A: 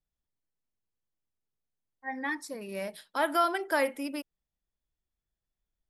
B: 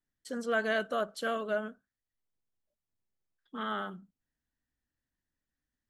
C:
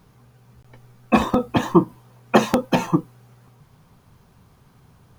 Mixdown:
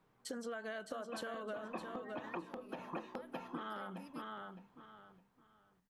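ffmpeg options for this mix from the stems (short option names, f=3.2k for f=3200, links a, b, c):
-filter_complex "[0:a]acompressor=threshold=-38dB:ratio=6,volume=-13.5dB[a];[1:a]equalizer=f=900:t=o:w=0.78:g=5,acompressor=threshold=-37dB:ratio=6,volume=1.5dB,asplit=3[b][c][d];[c]volume=-7.5dB[e];[2:a]acrossover=split=210 3600:gain=0.224 1 0.141[f][g][h];[f][g][h]amix=inputs=3:normalize=0,bandreject=f=61.65:t=h:w=4,bandreject=f=123.3:t=h:w=4,bandreject=f=184.95:t=h:w=4,bandreject=f=246.6:t=h:w=4,bandreject=f=308.25:t=h:w=4,bandreject=f=369.9:t=h:w=4,bandreject=f=431.55:t=h:w=4,volume=-14dB,asplit=2[i][j];[j]volume=-5.5dB[k];[d]apad=whole_len=228678[l];[i][l]sidechaincompress=threshold=-47dB:ratio=8:attack=16:release=307[m];[a][m]amix=inputs=2:normalize=0,acompressor=threshold=-39dB:ratio=6,volume=0dB[n];[e][k]amix=inputs=2:normalize=0,aecho=0:1:612|1224|1836|2448:1|0.25|0.0625|0.0156[o];[b][n][o]amix=inputs=3:normalize=0,acompressor=threshold=-40dB:ratio=6"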